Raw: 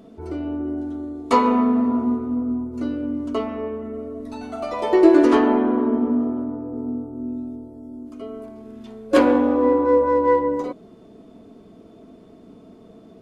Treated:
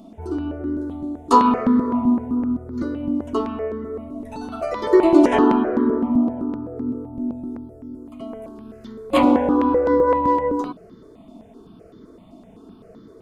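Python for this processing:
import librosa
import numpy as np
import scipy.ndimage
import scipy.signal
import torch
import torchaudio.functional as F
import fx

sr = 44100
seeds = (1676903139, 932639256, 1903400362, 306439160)

y = fx.phaser_held(x, sr, hz=7.8, low_hz=450.0, high_hz=2600.0)
y = F.gain(torch.from_numpy(y), 4.5).numpy()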